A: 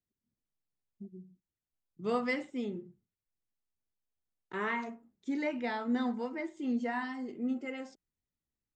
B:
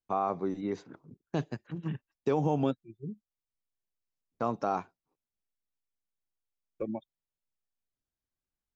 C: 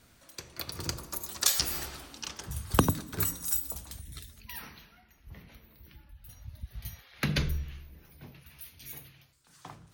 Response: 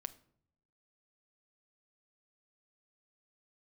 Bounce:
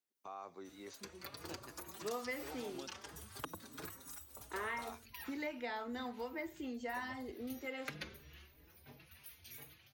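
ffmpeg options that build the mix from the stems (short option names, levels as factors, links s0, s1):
-filter_complex "[0:a]highpass=260,volume=1.06[s0];[1:a]alimiter=limit=0.075:level=0:latency=1:release=58,crystalizer=i=10:c=0,adelay=150,volume=0.133[s1];[2:a]acompressor=threshold=0.0251:ratio=6,asplit=2[s2][s3];[s3]adelay=4.5,afreqshift=2.9[s4];[s2][s4]amix=inputs=2:normalize=1,adelay=650,volume=0.841[s5];[s0][s1][s5]amix=inputs=3:normalize=0,acrossover=split=160|2800[s6][s7][s8];[s6]acompressor=threshold=0.00158:ratio=4[s9];[s7]acompressor=threshold=0.0112:ratio=4[s10];[s8]acompressor=threshold=0.00282:ratio=4[s11];[s9][s10][s11]amix=inputs=3:normalize=0,highpass=71,equalizer=f=170:w=1.4:g=-8.5"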